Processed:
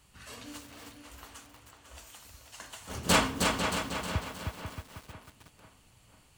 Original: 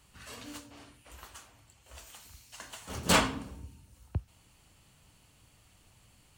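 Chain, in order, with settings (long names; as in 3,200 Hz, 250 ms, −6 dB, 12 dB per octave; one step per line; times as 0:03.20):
tape delay 498 ms, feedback 48%, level −6 dB, low-pass 4,700 Hz
feedback echo at a low word length 313 ms, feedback 55%, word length 8 bits, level −4 dB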